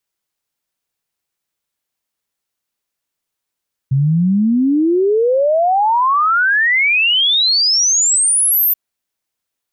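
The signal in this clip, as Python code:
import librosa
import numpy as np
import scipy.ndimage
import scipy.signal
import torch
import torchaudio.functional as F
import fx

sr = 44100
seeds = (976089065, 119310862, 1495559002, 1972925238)

y = fx.ess(sr, length_s=4.83, from_hz=130.0, to_hz=14000.0, level_db=-10.5)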